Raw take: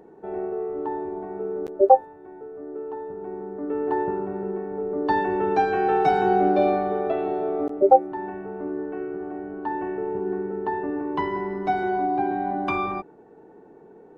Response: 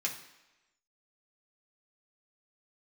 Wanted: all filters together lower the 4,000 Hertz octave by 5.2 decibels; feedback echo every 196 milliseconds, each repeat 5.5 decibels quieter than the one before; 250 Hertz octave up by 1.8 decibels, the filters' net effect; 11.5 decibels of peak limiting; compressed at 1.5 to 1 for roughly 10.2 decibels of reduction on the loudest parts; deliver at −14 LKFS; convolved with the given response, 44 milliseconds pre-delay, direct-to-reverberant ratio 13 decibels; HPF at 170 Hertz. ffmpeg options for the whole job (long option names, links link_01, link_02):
-filter_complex "[0:a]highpass=170,equalizer=frequency=250:width_type=o:gain=3.5,equalizer=frequency=4000:width_type=o:gain=-6.5,acompressor=threshold=-37dB:ratio=1.5,alimiter=limit=-23dB:level=0:latency=1,aecho=1:1:196|392|588|784|980|1176|1372:0.531|0.281|0.149|0.079|0.0419|0.0222|0.0118,asplit=2[link_01][link_02];[1:a]atrim=start_sample=2205,adelay=44[link_03];[link_02][link_03]afir=irnorm=-1:irlink=0,volume=-17dB[link_04];[link_01][link_04]amix=inputs=2:normalize=0,volume=18.5dB"